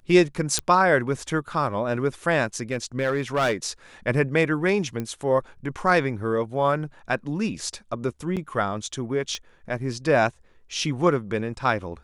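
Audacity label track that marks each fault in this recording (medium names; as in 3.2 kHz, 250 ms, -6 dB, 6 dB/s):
0.590000	0.590000	pop -7 dBFS
2.710000	3.660000	clipped -17.5 dBFS
5.000000	5.000000	pop -17 dBFS
8.360000	8.370000	dropout 7.5 ms
9.350000	9.350000	pop -17 dBFS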